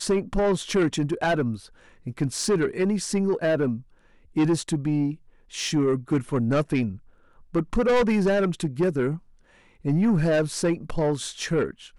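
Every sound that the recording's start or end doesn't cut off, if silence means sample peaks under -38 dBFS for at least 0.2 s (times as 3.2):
2.06–3.8
4.36–5.15
5.53–6.97
7.54–9.18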